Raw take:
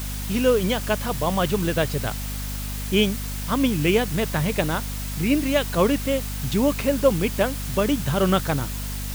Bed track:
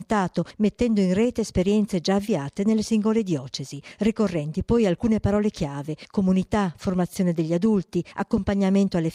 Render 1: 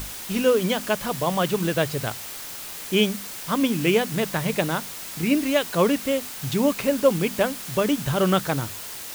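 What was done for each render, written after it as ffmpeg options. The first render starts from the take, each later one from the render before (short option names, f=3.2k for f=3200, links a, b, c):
-af "bandreject=f=50:t=h:w=6,bandreject=f=100:t=h:w=6,bandreject=f=150:t=h:w=6,bandreject=f=200:t=h:w=6,bandreject=f=250:t=h:w=6"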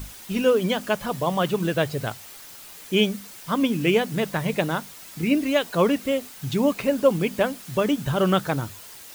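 -af "afftdn=nr=8:nf=-36"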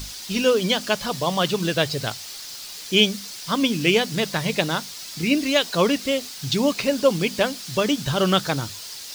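-af "equalizer=f=4.8k:t=o:w=1.3:g=14.5"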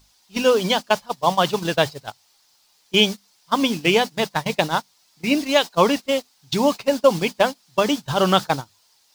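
-af "agate=range=-24dB:threshold=-23dB:ratio=16:detection=peak,equalizer=f=870:w=1.7:g=9.5"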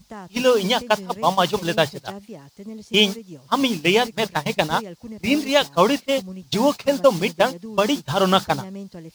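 -filter_complex "[1:a]volume=-15dB[a];[0:a][a]amix=inputs=2:normalize=0"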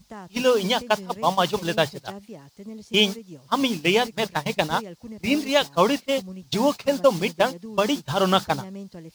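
-af "volume=-2.5dB"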